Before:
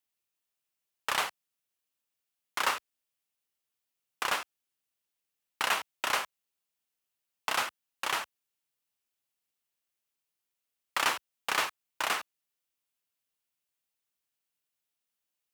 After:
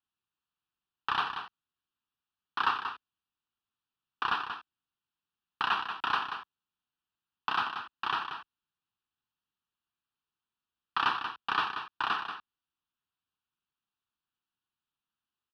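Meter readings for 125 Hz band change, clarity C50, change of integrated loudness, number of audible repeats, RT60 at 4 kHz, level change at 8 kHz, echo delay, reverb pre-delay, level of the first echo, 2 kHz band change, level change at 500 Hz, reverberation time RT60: +3.5 dB, none, -0.5 dB, 1, none, under -20 dB, 0.184 s, none, -8.5 dB, -1.5 dB, -8.5 dB, none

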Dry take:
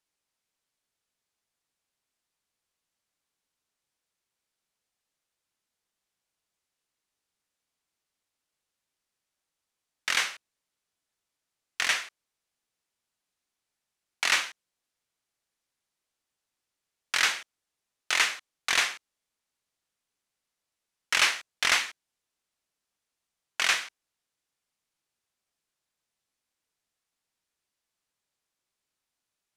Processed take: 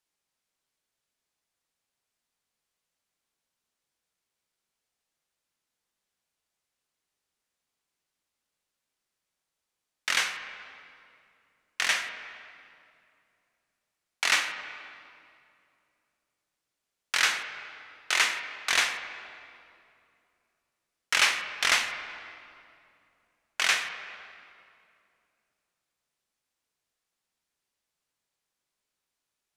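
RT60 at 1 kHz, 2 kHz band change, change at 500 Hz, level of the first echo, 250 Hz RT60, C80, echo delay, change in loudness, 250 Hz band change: 2.4 s, +1.0 dB, +1.0 dB, none, 3.1 s, 9.0 dB, none, -0.5 dB, +0.5 dB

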